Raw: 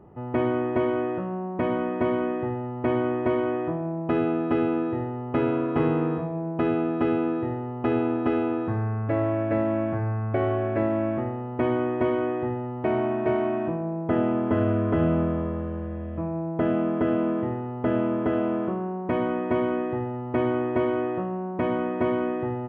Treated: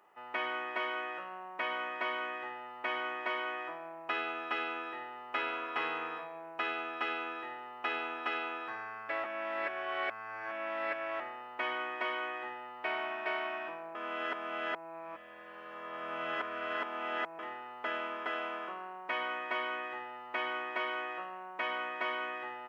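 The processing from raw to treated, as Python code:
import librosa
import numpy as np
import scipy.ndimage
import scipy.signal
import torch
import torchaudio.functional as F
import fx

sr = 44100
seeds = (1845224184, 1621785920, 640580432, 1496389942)

y = fx.edit(x, sr, fx.reverse_span(start_s=9.24, length_s=1.96),
    fx.reverse_span(start_s=13.95, length_s=3.44), tone=tone)
y = scipy.signal.sosfilt(scipy.signal.butter(2, 1300.0, 'highpass', fs=sr, output='sos'), y)
y = fx.high_shelf(y, sr, hz=2100.0, db=9.0)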